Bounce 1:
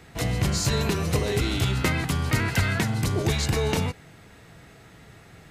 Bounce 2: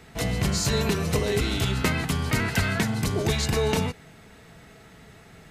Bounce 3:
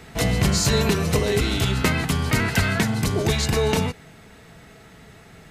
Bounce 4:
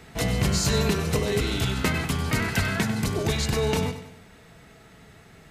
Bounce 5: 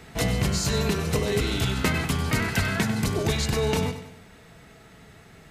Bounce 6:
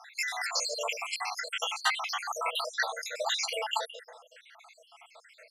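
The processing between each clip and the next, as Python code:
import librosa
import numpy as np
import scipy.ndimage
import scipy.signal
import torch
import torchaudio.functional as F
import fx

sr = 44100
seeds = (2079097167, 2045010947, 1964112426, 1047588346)

y1 = x + 0.31 * np.pad(x, (int(4.6 * sr / 1000.0), 0))[:len(x)]
y2 = fx.rider(y1, sr, range_db=10, speed_s=2.0)
y2 = y2 * librosa.db_to_amplitude(3.5)
y3 = fx.echo_feedback(y2, sr, ms=97, feedback_pct=45, wet_db=-12)
y3 = y3 * librosa.db_to_amplitude(-4.0)
y4 = fx.rider(y3, sr, range_db=10, speed_s=0.5)
y5 = fx.spec_dropout(y4, sr, seeds[0], share_pct=74)
y5 = fx.brickwall_highpass(y5, sr, low_hz=470.0)
y5 = fx.air_absorb(y5, sr, metres=51.0)
y5 = y5 * librosa.db_to_amplitude(5.5)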